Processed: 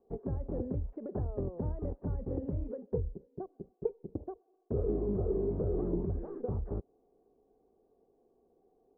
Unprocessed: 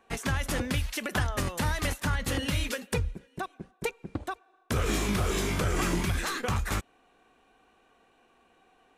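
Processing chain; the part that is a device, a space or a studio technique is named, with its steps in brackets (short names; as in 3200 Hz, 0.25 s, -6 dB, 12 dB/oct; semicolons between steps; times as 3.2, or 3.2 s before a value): under water (LPF 650 Hz 24 dB/oct; bell 410 Hz +9.5 dB 0.39 oct); gain -5.5 dB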